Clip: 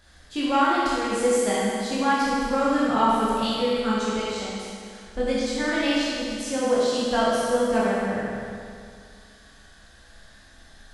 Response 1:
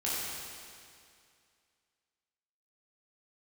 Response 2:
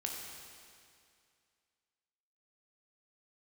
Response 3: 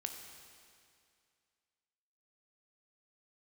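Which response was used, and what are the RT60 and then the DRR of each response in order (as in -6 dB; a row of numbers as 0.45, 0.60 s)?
1; 2.3, 2.3, 2.3 s; -8.5, -0.5, 4.0 dB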